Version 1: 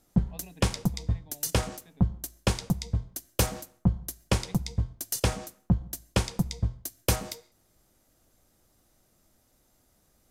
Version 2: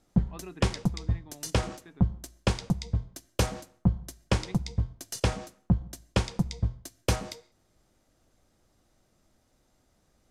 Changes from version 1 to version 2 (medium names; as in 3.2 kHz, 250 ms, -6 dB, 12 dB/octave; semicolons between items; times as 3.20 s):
speech: remove static phaser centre 350 Hz, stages 6; master: add distance through air 56 m